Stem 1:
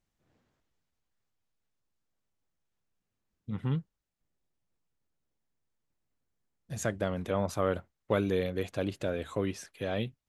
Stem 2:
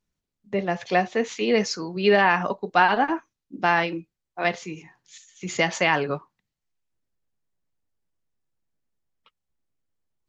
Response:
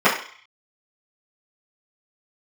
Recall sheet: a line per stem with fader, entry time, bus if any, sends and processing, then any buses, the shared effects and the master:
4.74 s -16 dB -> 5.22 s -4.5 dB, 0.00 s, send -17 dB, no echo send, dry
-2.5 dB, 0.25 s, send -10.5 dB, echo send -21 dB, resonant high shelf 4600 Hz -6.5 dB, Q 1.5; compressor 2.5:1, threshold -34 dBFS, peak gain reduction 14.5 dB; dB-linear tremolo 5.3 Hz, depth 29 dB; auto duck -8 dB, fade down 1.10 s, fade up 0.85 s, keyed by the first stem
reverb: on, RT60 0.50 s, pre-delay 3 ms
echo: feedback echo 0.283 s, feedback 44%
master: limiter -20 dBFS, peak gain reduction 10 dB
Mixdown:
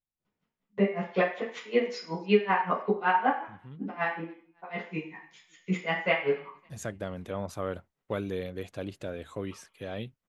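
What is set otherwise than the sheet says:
stem 1: send off; master: missing limiter -20 dBFS, peak gain reduction 10 dB

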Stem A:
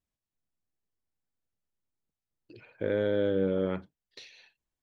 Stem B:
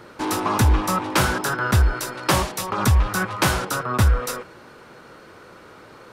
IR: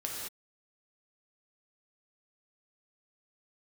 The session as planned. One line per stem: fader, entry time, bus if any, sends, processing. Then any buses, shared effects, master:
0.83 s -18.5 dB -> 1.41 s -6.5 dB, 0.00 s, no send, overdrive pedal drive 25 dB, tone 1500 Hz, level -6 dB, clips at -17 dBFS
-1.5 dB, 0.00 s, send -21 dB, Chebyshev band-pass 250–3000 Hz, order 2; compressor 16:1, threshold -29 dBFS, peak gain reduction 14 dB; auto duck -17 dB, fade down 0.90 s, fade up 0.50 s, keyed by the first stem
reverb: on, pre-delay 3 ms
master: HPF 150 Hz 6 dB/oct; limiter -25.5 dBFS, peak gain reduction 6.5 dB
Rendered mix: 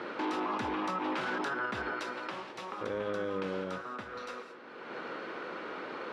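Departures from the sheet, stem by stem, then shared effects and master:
stem A: missing overdrive pedal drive 25 dB, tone 1500 Hz, level -6 dB, clips at -17 dBFS; stem B -1.5 dB -> +5.0 dB

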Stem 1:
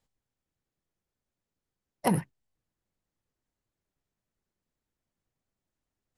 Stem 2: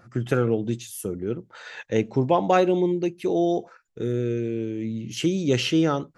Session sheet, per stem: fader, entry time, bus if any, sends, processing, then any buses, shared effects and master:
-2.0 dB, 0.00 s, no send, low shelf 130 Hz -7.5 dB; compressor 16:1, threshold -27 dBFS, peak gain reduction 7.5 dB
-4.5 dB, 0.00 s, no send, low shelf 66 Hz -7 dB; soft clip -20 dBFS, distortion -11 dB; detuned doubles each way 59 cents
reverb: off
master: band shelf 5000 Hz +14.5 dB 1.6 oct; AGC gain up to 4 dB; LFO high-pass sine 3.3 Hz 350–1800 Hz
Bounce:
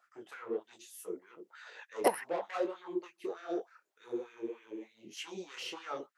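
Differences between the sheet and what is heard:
stem 2 -4.5 dB -> -13.5 dB; master: missing band shelf 5000 Hz +14.5 dB 1.6 oct

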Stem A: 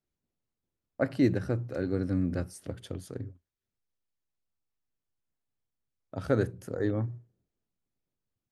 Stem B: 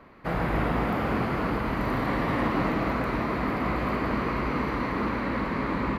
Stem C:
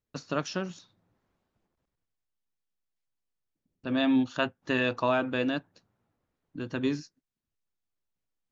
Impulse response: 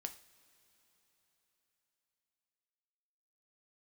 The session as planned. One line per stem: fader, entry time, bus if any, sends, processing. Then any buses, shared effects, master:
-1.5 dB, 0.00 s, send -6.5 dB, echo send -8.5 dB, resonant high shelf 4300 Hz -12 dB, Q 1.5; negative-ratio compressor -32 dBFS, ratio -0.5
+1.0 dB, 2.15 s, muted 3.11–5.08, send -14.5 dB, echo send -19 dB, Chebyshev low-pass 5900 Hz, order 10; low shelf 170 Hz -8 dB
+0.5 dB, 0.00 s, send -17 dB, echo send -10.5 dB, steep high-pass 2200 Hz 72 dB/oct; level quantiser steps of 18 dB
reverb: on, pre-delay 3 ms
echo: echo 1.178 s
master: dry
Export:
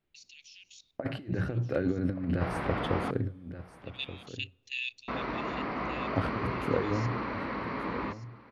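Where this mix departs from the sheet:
stem A: send -6.5 dB -> -0.5 dB; stem B +1.0 dB -> -5.5 dB

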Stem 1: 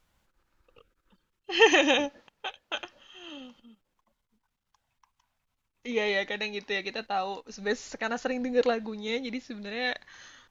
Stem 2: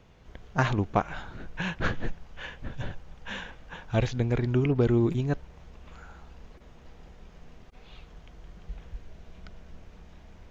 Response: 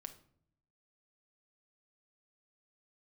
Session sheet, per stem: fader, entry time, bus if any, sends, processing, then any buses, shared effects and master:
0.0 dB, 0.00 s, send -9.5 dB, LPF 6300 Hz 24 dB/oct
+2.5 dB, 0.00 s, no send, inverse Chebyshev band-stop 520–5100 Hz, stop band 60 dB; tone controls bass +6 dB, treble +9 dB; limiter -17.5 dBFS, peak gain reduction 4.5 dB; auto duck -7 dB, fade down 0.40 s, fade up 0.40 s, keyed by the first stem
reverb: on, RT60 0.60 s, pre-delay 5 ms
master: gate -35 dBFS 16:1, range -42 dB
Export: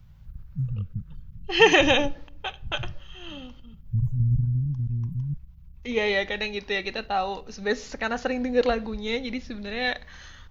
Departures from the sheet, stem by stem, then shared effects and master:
stem 1: send -9.5 dB -> -1 dB; master: missing gate -35 dBFS 16:1, range -42 dB

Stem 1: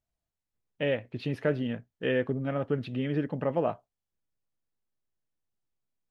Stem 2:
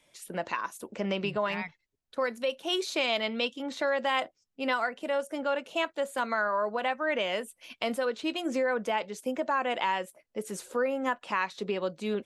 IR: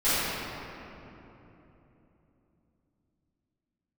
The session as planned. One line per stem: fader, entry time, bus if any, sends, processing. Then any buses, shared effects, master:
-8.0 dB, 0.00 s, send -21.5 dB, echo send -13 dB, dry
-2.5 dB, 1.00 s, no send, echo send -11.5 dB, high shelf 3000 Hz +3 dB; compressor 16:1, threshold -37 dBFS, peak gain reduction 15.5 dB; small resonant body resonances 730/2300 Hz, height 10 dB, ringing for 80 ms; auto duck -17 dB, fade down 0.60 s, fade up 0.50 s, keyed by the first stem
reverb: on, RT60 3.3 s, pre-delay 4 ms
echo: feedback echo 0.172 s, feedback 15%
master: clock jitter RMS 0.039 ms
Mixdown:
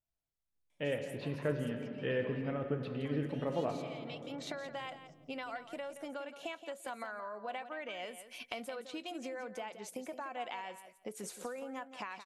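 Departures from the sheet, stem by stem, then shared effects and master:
stem 2: entry 1.00 s -> 0.70 s; master: missing clock jitter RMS 0.039 ms

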